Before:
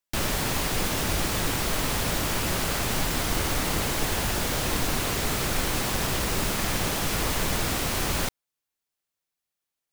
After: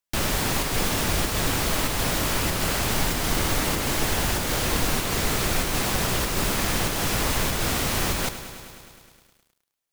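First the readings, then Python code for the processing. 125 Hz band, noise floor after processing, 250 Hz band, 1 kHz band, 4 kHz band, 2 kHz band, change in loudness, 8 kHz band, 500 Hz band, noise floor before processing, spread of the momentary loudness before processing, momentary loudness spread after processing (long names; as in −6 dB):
+2.0 dB, −74 dBFS, +2.0 dB, +2.0 dB, +2.0 dB, +2.0 dB, +2.0 dB, +2.0 dB, +2.0 dB, below −85 dBFS, 0 LU, 1 LU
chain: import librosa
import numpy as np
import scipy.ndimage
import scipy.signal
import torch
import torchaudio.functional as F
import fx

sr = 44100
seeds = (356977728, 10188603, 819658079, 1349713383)

p1 = fx.volume_shaper(x, sr, bpm=96, per_beat=1, depth_db=-9, release_ms=113.0, shape='slow start')
p2 = x + (p1 * librosa.db_to_amplitude(-1.0))
p3 = fx.echo_crushed(p2, sr, ms=104, feedback_pct=80, bits=8, wet_db=-13.0)
y = p3 * librosa.db_to_amplitude(-3.5)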